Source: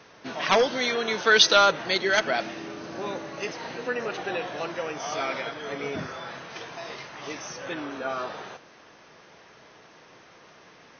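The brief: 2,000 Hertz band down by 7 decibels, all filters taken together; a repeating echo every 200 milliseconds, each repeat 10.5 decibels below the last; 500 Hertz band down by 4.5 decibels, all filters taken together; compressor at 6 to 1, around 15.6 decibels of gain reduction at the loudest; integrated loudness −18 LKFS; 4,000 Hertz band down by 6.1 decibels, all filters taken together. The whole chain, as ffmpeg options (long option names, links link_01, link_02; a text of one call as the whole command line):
ffmpeg -i in.wav -af "equalizer=frequency=500:width_type=o:gain=-5,equalizer=frequency=2000:width_type=o:gain=-9,equalizer=frequency=4000:width_type=o:gain=-4.5,acompressor=threshold=-36dB:ratio=6,aecho=1:1:200|400|600:0.299|0.0896|0.0269,volume=22dB" out.wav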